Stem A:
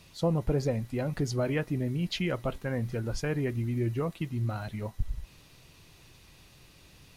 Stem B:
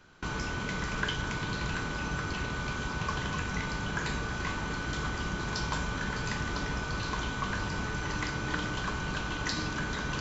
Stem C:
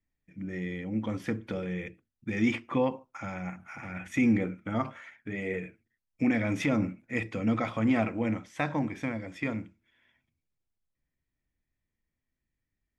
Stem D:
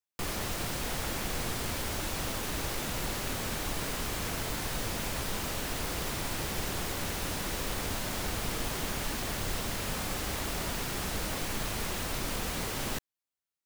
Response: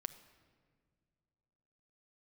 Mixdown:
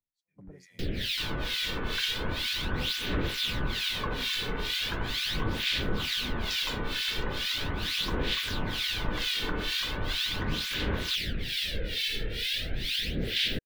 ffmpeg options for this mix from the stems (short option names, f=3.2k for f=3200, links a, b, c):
-filter_complex "[0:a]equalizer=f=7.4k:w=0.61:g=6.5,acompressor=threshold=-32dB:ratio=6,volume=-12.5dB[a];[1:a]highpass=220,adelay=950,volume=1.5dB[b];[2:a]flanger=delay=18.5:depth=5.4:speed=0.51,volume=-13dB,asplit=2[c][d];[3:a]firequalizer=gain_entry='entry(490,0);entry(1000,-28);entry(1600,2);entry(3500,14);entry(6700,-10);entry(15000,-6)':delay=0.05:min_phase=1,aphaser=in_gain=1:out_gain=1:delay=2.3:decay=0.51:speed=0.39:type=sinusoidal,adelay=600,volume=2dB[e];[d]apad=whole_len=316020[f];[a][f]sidechaingate=range=-33dB:threshold=-59dB:ratio=16:detection=peak[g];[g][b][c][e]amix=inputs=4:normalize=0,acrossover=split=1600[h][i];[h]aeval=exprs='val(0)*(1-1/2+1/2*cos(2*PI*2.2*n/s))':c=same[j];[i]aeval=exprs='val(0)*(1-1/2-1/2*cos(2*PI*2.2*n/s))':c=same[k];[j][k]amix=inputs=2:normalize=0"